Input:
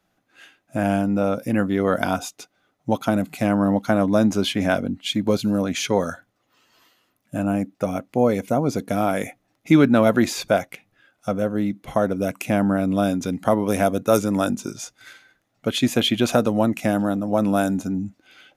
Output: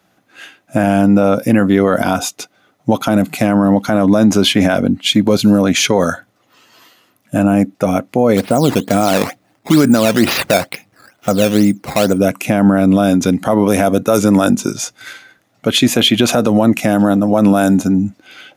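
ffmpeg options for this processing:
ffmpeg -i in.wav -filter_complex "[0:a]asplit=3[link_01][link_02][link_03];[link_01]afade=type=out:start_time=8.36:duration=0.02[link_04];[link_02]acrusher=samples=10:mix=1:aa=0.000001:lfo=1:lforange=10:lforate=2.2,afade=type=in:start_time=8.36:duration=0.02,afade=type=out:start_time=12.17:duration=0.02[link_05];[link_03]afade=type=in:start_time=12.17:duration=0.02[link_06];[link_04][link_05][link_06]amix=inputs=3:normalize=0,highpass=87,alimiter=level_in=13dB:limit=-1dB:release=50:level=0:latency=1,volume=-1dB" out.wav

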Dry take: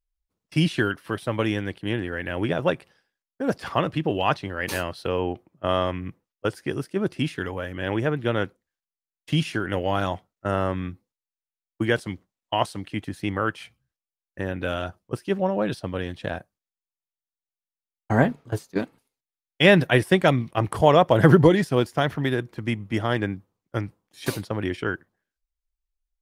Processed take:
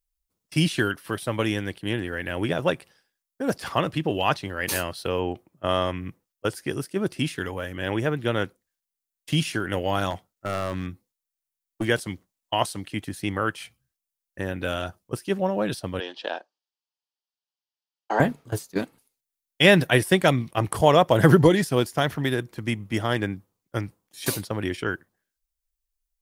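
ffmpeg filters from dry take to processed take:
ffmpeg -i in.wav -filter_complex "[0:a]asettb=1/sr,asplit=3[link_01][link_02][link_03];[link_01]atrim=end=10.104[link_04];[link_02]atrim=start=10.1:end=11.88,asetpts=PTS-STARTPTS,afade=type=in:duration=0.004:curve=qsin,afade=type=out:start_time=1.776:duration=0.004:curve=qsin,aeval=exprs='clip(val(0),-1,0.0794)':channel_layout=same[link_05];[link_03]atrim=start=11.876[link_06];[link_04][link_05]acrossfade=duration=0.004:curve1=hsin:curve2=qsin[link_07];[link_07][link_06]acrossfade=duration=0.004:curve1=qsin:curve2=hsin,asettb=1/sr,asplit=3[link_08][link_09][link_10];[link_08]atrim=end=16.004[link_11];[link_09]atrim=start=16:end=18.2,asetpts=PTS-STARTPTS,afade=type=in:duration=0.004:curve=qsin,afade=type=out:start_time=2.196:duration=0.004:curve=qsin,highpass=frequency=330:width=0.5412,highpass=frequency=330:width=1.3066,equalizer=frequency=880:width_type=q:width=4:gain=7,equalizer=frequency=2100:width_type=q:width=4:gain=-6,equalizer=frequency=3000:width_type=q:width=4:gain=6,equalizer=frequency=4800:width_type=q:width=4:gain=6,lowpass=frequency=5500:width=0.5412,lowpass=frequency=5500:width=1.3066[link_12];[link_10]atrim=start=18.196[link_13];[link_11][link_12]acrossfade=duration=0.004:curve1=hsin:curve2=qsin[link_14];[link_14][link_13]acrossfade=duration=0.004:curve1=qsin:curve2=hsin,highshelf=frequency=5300:gain=11.5,volume=-1dB" out.wav

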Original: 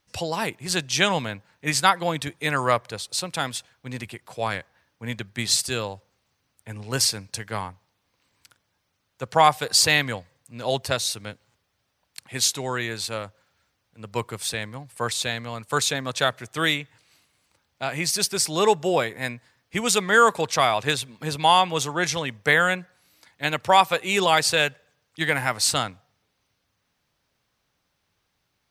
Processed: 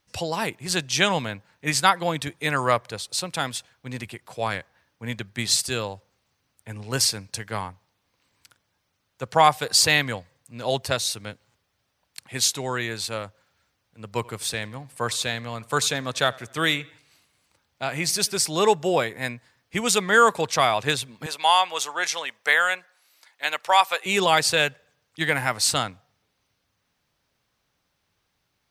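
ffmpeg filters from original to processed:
ffmpeg -i in.wav -filter_complex "[0:a]asettb=1/sr,asplit=3[link_01][link_02][link_03];[link_01]atrim=end=14.114[link_04];[link_02]atrim=start=14.11:end=18.37,asetpts=PTS-STARTPTS,afade=type=in:duration=0.004:curve=qsin,afade=type=out:start_time=4.256:duration=0.004:curve=qsin,asplit=2[link_05][link_06];[link_06]adelay=85,lowpass=frequency=4800:poles=1,volume=-23dB,asplit=2[link_07][link_08];[link_08]adelay=85,lowpass=frequency=4800:poles=1,volume=0.49,asplit=2[link_09][link_10];[link_10]adelay=85,lowpass=frequency=4800:poles=1,volume=0.49[link_11];[link_05][link_07][link_09][link_11]amix=inputs=4:normalize=0,atrim=end_sample=187866[link_12];[link_03]atrim=start=18.366[link_13];[link_04][link_12]acrossfade=duration=0.004:curve1=hsin:curve2=qsin[link_14];[link_14][link_13]acrossfade=duration=0.004:curve1=qsin:curve2=hsin,asettb=1/sr,asplit=3[link_15][link_16][link_17];[link_15]atrim=end=21.264[link_18];[link_16]atrim=start=21.26:end=24.06,asetpts=PTS-STARTPTS,afade=type=in:duration=0.004:curve=qsin,afade=type=out:start_time=2.796:duration=0.004:curve=qsin,highpass=680[link_19];[link_17]atrim=start=24.056[link_20];[link_18][link_19]acrossfade=duration=0.004:curve1=hsin:curve2=qsin[link_21];[link_21][link_20]acrossfade=duration=0.004:curve1=qsin:curve2=hsin" out.wav

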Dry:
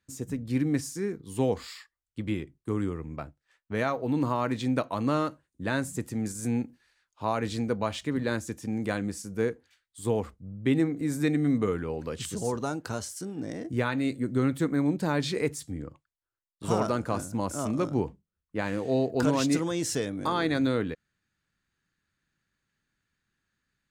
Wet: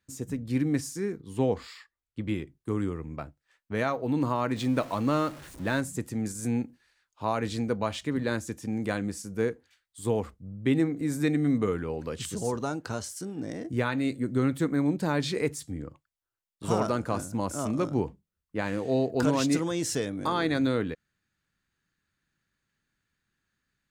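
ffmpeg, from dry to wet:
ffmpeg -i in.wav -filter_complex "[0:a]asettb=1/sr,asplit=3[link_01][link_02][link_03];[link_01]atrim=end=1.224[link_04];[link_02]atrim=start=1.22:end=2.29,asetpts=PTS-STARTPTS,afade=type=in:duration=0.004:curve=qsin,afade=type=out:start_time=1.066:duration=0.004:curve=qsin,aemphasis=mode=reproduction:type=cd[link_05];[link_03]atrim=start=2.286[link_06];[link_04][link_05]acrossfade=duration=0.004:curve1=hsin:curve2=qsin[link_07];[link_07][link_06]acrossfade=duration=0.004:curve1=qsin:curve2=hsin,asettb=1/sr,asplit=3[link_08][link_09][link_10];[link_08]atrim=end=4.564[link_11];[link_09]atrim=start=4.56:end=5.81,asetpts=PTS-STARTPTS,afade=type=in:duration=0.004:curve=qsin,afade=type=out:start_time=1.246:duration=0.004:curve=qsin,aeval=exprs='val(0)+0.5*0.00944*sgn(val(0))':channel_layout=same[link_12];[link_10]atrim=start=5.806[link_13];[link_11][link_12]acrossfade=duration=0.004:curve1=hsin:curve2=qsin[link_14];[link_14][link_13]acrossfade=duration=0.004:curve1=qsin:curve2=hsin,asettb=1/sr,asplit=3[link_15][link_16][link_17];[link_15]atrim=end=12.514[link_18];[link_16]atrim=start=12.51:end=13.04,asetpts=PTS-STARTPTS,afade=type=in:duration=0.004:curve=qsin,afade=type=out:start_time=0.526:duration=0.004:curve=qsin,acrossover=split=8200[link_19][link_20];[link_20]acompressor=threshold=-59dB:ratio=4:attack=1:release=60[link_21];[link_19][link_21]amix=inputs=2:normalize=0[link_22];[link_17]atrim=start=13.036[link_23];[link_18][link_22]acrossfade=duration=0.004:curve1=hsin:curve2=qsin[link_24];[link_24][link_23]acrossfade=duration=0.004:curve1=qsin:curve2=hsin" out.wav

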